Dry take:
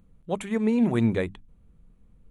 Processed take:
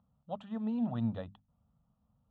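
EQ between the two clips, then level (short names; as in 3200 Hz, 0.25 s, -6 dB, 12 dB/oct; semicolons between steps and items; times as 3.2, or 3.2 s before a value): dynamic EQ 980 Hz, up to -7 dB, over -46 dBFS, Q 1.5; speaker cabinet 160–3000 Hz, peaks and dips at 180 Hz -9 dB, 300 Hz -8 dB, 480 Hz -8 dB, 1000 Hz -4 dB, 1600 Hz -10 dB, 2300 Hz -7 dB; fixed phaser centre 910 Hz, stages 4; 0.0 dB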